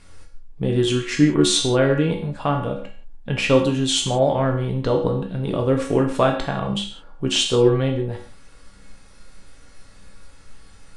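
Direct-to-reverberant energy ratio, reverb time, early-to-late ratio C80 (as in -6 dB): 1.0 dB, no single decay rate, 10.5 dB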